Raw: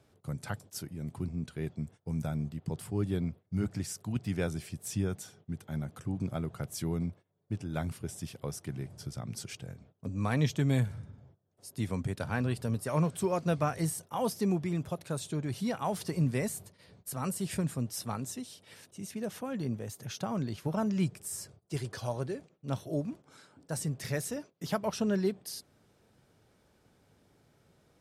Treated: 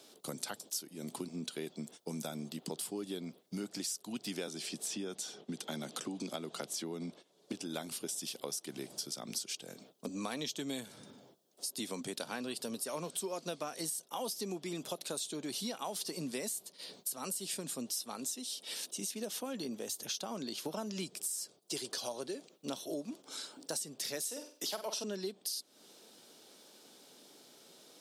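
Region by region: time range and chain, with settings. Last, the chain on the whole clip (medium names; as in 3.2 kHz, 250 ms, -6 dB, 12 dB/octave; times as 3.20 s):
4.47–7.53 s: high-pass 110 Hz + distance through air 50 m + three bands compressed up and down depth 70%
24.24–25.04 s: high-pass 320 Hz + flutter echo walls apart 8.1 m, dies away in 0.31 s
whole clip: high-pass 240 Hz 24 dB/octave; resonant high shelf 2.7 kHz +9 dB, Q 1.5; compression 6:1, threshold -44 dBFS; trim +7 dB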